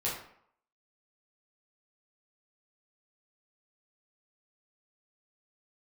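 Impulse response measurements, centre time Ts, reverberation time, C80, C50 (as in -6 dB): 42 ms, 0.65 s, 7.5 dB, 3.5 dB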